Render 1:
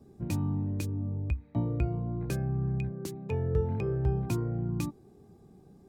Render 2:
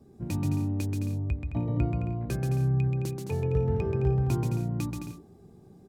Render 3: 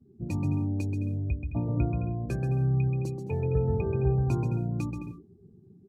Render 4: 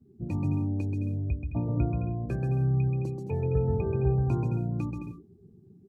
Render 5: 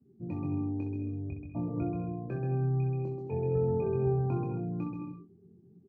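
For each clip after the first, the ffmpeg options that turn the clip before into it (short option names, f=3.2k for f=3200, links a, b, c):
-af "aecho=1:1:130|214.5|269.4|305.1|328.3:0.631|0.398|0.251|0.158|0.1"
-af "afftdn=nr=21:nf=-45"
-filter_complex "[0:a]acrossover=split=2500[a][b];[b]acompressor=threshold=-58dB:ratio=4:attack=1:release=60[c];[a][c]amix=inputs=2:normalize=0"
-filter_complex "[0:a]highpass=120,lowpass=2.1k,asplit=2[a][b];[b]aecho=0:1:23|64|75:0.596|0.398|0.178[c];[a][c]amix=inputs=2:normalize=0,volume=-4.5dB"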